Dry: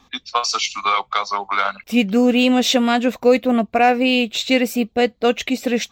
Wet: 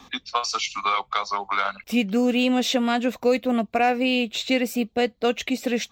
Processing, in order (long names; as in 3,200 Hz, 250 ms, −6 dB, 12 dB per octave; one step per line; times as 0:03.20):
multiband upward and downward compressor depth 40%
level −5.5 dB